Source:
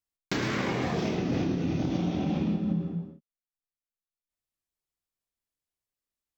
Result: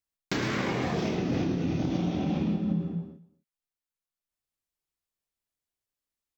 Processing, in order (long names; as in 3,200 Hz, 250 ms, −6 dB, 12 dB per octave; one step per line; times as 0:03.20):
single-tap delay 239 ms −22.5 dB